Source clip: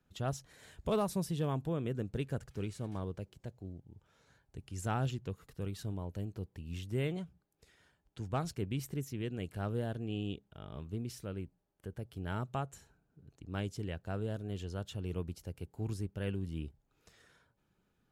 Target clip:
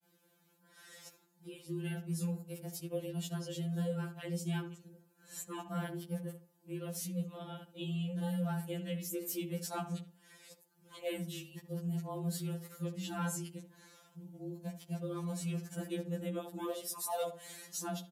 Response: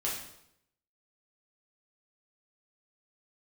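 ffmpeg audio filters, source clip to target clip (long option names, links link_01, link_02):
-filter_complex "[0:a]areverse,highpass=98,aemphasis=mode=production:type=50fm,acompressor=threshold=-48dB:ratio=2,afreqshift=64,asplit=2[link_01][link_02];[link_02]adelay=72,lowpass=frequency=1500:poles=1,volume=-10dB,asplit=2[link_03][link_04];[link_04]adelay=72,lowpass=frequency=1500:poles=1,volume=0.31,asplit=2[link_05][link_06];[link_06]adelay=72,lowpass=frequency=1500:poles=1,volume=0.31[link_07];[link_01][link_03][link_05][link_07]amix=inputs=4:normalize=0,asplit=2[link_08][link_09];[1:a]atrim=start_sample=2205[link_10];[link_09][link_10]afir=irnorm=-1:irlink=0,volume=-27.5dB[link_11];[link_08][link_11]amix=inputs=2:normalize=0,aresample=32000,aresample=44100,afftfilt=real='re*2.83*eq(mod(b,8),0)':imag='im*2.83*eq(mod(b,8),0)':win_size=2048:overlap=0.75,volume=7.5dB"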